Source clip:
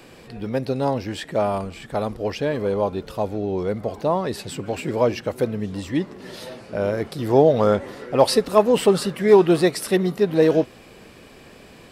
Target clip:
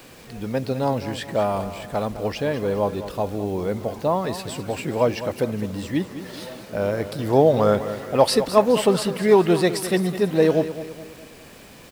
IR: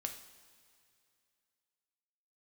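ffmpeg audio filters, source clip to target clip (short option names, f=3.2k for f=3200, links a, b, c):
-filter_complex "[0:a]equalizer=f=380:t=o:w=0.45:g=-3,acrusher=bits=7:mix=0:aa=0.000001,asplit=2[a][b];[b]aecho=0:1:208|416|624|832:0.237|0.107|0.048|0.0216[c];[a][c]amix=inputs=2:normalize=0"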